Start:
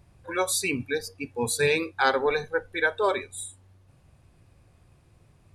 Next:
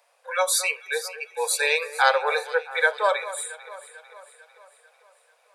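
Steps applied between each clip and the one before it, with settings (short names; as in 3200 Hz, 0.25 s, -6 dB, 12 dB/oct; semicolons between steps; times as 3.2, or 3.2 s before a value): steep high-pass 470 Hz 96 dB/oct; echo with dull and thin repeats by turns 0.223 s, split 1900 Hz, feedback 71%, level -13.5 dB; gain +4 dB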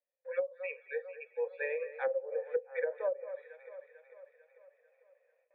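gate with hold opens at -51 dBFS; vocal tract filter e; treble ducked by the level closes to 330 Hz, closed at -25 dBFS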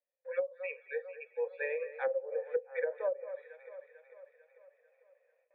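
nothing audible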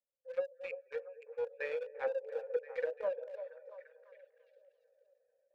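Wiener smoothing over 41 samples; on a send: delay with a stepping band-pass 0.342 s, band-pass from 620 Hz, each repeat 0.7 oct, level -9.5 dB; on the sum: gain -1.5 dB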